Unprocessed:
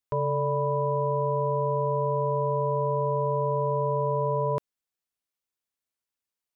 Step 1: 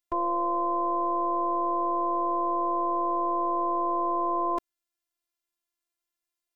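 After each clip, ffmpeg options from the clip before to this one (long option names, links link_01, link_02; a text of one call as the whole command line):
ffmpeg -i in.wav -af "afftfilt=real='hypot(re,im)*cos(PI*b)':imag='0':win_size=512:overlap=0.75,volume=4.5dB" out.wav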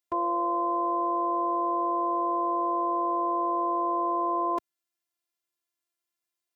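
ffmpeg -i in.wav -af "highpass=97" out.wav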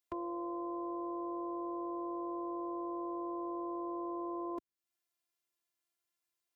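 ffmpeg -i in.wav -filter_complex "[0:a]acrossover=split=330[link_01][link_02];[link_02]acompressor=threshold=-47dB:ratio=3[link_03];[link_01][link_03]amix=inputs=2:normalize=0,volume=-1.5dB" out.wav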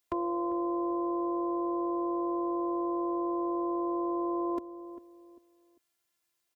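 ffmpeg -i in.wav -filter_complex "[0:a]asplit=2[link_01][link_02];[link_02]adelay=397,lowpass=frequency=900:poles=1,volume=-12dB,asplit=2[link_03][link_04];[link_04]adelay=397,lowpass=frequency=900:poles=1,volume=0.33,asplit=2[link_05][link_06];[link_06]adelay=397,lowpass=frequency=900:poles=1,volume=0.33[link_07];[link_01][link_03][link_05][link_07]amix=inputs=4:normalize=0,volume=8dB" out.wav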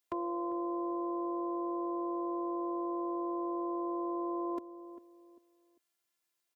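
ffmpeg -i in.wav -af "lowshelf=frequency=100:gain=-11.5,volume=-3.5dB" out.wav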